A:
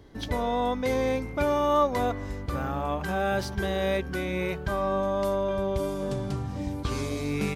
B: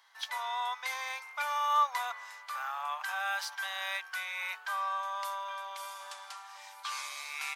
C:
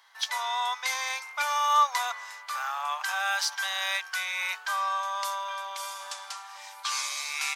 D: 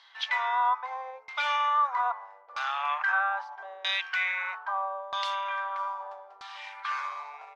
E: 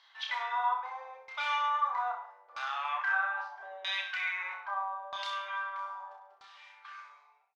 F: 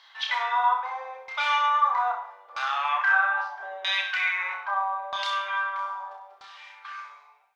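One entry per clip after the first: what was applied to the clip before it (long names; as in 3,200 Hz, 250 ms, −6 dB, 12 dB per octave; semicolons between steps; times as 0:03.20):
Butterworth high-pass 900 Hz 36 dB per octave
dynamic equaliser 6,100 Hz, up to +8 dB, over −55 dBFS, Q 0.87; level +4.5 dB
brickwall limiter −21.5 dBFS, peak gain reduction 9 dB; auto-filter low-pass saw down 0.78 Hz 430–4,200 Hz
fade-out on the ending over 2.12 s; on a send: reverse bouncing-ball delay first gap 30 ms, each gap 1.1×, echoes 5; on the sum: level −6.5 dB
convolution reverb, pre-delay 3 ms, DRR 16 dB; level +8 dB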